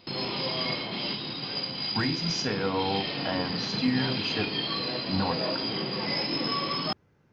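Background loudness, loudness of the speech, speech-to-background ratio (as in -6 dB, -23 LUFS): -29.5 LUFS, -31.5 LUFS, -2.0 dB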